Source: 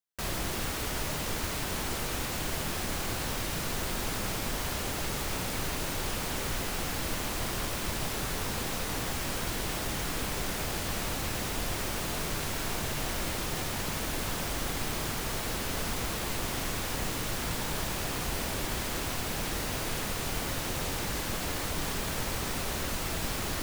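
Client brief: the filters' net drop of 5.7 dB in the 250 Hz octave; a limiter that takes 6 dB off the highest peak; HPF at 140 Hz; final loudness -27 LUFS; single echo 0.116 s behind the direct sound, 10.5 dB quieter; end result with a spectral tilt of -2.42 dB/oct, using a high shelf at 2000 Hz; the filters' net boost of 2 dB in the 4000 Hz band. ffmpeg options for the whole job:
-af "highpass=140,equalizer=f=250:t=o:g=-7,highshelf=f=2k:g=-4,equalizer=f=4k:t=o:g=6.5,alimiter=level_in=4dB:limit=-24dB:level=0:latency=1,volume=-4dB,aecho=1:1:116:0.299,volume=8.5dB"

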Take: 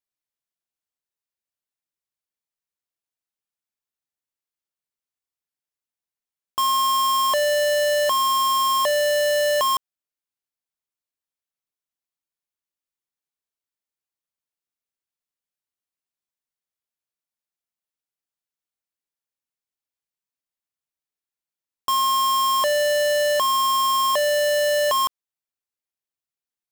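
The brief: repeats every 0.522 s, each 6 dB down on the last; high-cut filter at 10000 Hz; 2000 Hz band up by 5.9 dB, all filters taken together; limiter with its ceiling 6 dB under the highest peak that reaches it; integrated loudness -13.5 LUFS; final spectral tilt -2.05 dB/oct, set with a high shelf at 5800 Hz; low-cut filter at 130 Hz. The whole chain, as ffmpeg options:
-af "highpass=130,lowpass=10k,equalizer=f=2k:t=o:g=6,highshelf=f=5.8k:g=7,alimiter=limit=-16.5dB:level=0:latency=1,aecho=1:1:522|1044|1566|2088|2610|3132:0.501|0.251|0.125|0.0626|0.0313|0.0157,volume=9.5dB"

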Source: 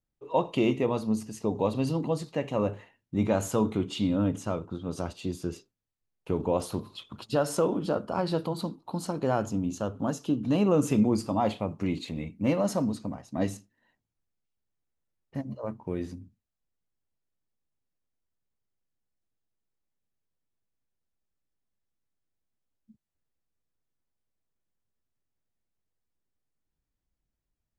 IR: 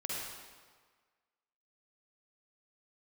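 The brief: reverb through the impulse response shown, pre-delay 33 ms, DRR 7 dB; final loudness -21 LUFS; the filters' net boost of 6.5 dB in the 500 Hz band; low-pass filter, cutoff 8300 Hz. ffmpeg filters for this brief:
-filter_complex "[0:a]lowpass=8.3k,equalizer=f=500:t=o:g=7.5,asplit=2[a][b];[1:a]atrim=start_sample=2205,adelay=33[c];[b][c]afir=irnorm=-1:irlink=0,volume=-10dB[d];[a][d]amix=inputs=2:normalize=0,volume=3.5dB"

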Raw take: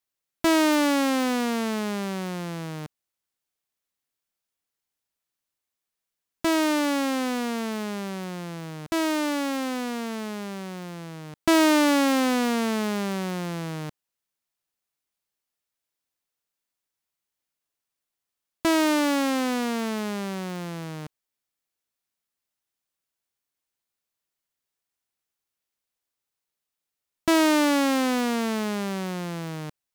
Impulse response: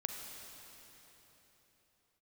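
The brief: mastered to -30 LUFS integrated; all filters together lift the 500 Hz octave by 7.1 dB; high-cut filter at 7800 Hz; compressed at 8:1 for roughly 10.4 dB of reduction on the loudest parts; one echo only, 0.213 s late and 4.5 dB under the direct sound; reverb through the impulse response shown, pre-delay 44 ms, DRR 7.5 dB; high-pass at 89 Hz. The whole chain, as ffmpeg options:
-filter_complex "[0:a]highpass=89,lowpass=7.8k,equalizer=f=500:t=o:g=9,acompressor=threshold=-23dB:ratio=8,aecho=1:1:213:0.596,asplit=2[a][b];[1:a]atrim=start_sample=2205,adelay=44[c];[b][c]afir=irnorm=-1:irlink=0,volume=-8dB[d];[a][d]amix=inputs=2:normalize=0,volume=-3dB"

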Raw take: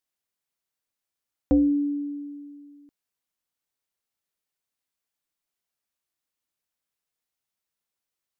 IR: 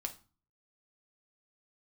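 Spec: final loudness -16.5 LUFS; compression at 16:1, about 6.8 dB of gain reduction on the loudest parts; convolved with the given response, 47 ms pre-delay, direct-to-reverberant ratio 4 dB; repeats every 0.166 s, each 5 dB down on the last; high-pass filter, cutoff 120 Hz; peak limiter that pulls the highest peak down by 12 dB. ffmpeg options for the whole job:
-filter_complex "[0:a]highpass=120,acompressor=threshold=-23dB:ratio=16,alimiter=level_in=2dB:limit=-24dB:level=0:latency=1,volume=-2dB,aecho=1:1:166|332|498|664|830|996|1162:0.562|0.315|0.176|0.0988|0.0553|0.031|0.0173,asplit=2[a][b];[1:a]atrim=start_sample=2205,adelay=47[c];[b][c]afir=irnorm=-1:irlink=0,volume=-3dB[d];[a][d]amix=inputs=2:normalize=0,volume=22.5dB"

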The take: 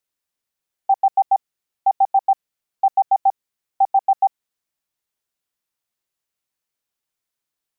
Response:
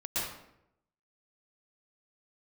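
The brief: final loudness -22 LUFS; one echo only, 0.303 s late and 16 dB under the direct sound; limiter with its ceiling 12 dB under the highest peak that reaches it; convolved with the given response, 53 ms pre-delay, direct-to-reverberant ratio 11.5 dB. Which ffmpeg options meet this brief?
-filter_complex "[0:a]alimiter=limit=-22dB:level=0:latency=1,aecho=1:1:303:0.158,asplit=2[a][b];[1:a]atrim=start_sample=2205,adelay=53[c];[b][c]afir=irnorm=-1:irlink=0,volume=-17.5dB[d];[a][d]amix=inputs=2:normalize=0,volume=10dB"

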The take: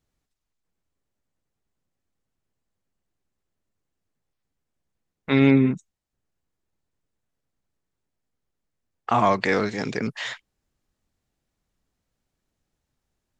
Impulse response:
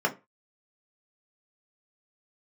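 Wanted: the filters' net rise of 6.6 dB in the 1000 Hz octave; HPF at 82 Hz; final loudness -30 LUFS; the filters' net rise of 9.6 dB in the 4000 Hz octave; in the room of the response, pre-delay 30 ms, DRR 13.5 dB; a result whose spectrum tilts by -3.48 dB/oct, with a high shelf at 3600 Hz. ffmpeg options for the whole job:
-filter_complex "[0:a]highpass=82,equalizer=f=1k:t=o:g=7,highshelf=f=3.6k:g=9,equalizer=f=4k:t=o:g=5.5,asplit=2[a][b];[1:a]atrim=start_sample=2205,adelay=30[c];[b][c]afir=irnorm=-1:irlink=0,volume=-25dB[d];[a][d]amix=inputs=2:normalize=0,volume=-11dB"

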